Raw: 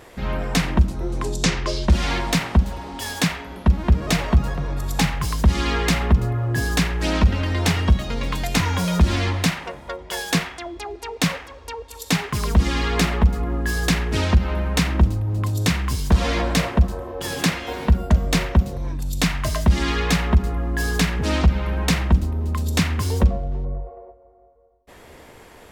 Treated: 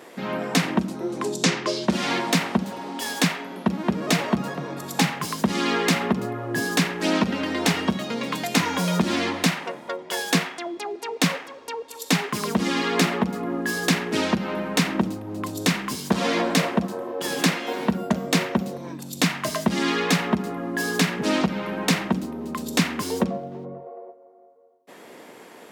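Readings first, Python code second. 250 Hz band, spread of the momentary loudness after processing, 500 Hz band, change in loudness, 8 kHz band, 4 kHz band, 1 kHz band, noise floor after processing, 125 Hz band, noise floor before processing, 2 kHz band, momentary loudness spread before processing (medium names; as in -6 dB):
+0.5 dB, 9 LU, +1.5 dB, -2.5 dB, 0.0 dB, 0.0 dB, +0.5 dB, -46 dBFS, -9.5 dB, -46 dBFS, 0.0 dB, 9 LU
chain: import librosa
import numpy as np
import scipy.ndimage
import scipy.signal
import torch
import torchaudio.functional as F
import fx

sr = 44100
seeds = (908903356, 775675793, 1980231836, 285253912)

y = scipy.signal.sosfilt(scipy.signal.butter(4, 200.0, 'highpass', fs=sr, output='sos'), x)
y = fx.low_shelf(y, sr, hz=290.0, db=5.5)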